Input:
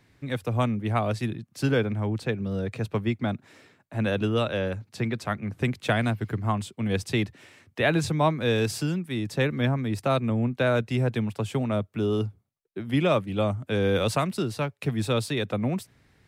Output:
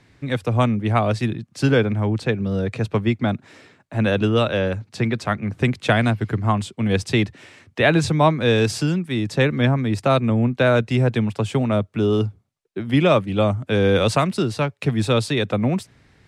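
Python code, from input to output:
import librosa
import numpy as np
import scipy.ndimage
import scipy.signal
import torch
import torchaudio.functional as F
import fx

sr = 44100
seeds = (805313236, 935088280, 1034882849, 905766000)

y = scipy.signal.sosfilt(scipy.signal.butter(2, 8800.0, 'lowpass', fs=sr, output='sos'), x)
y = y * librosa.db_to_amplitude(6.5)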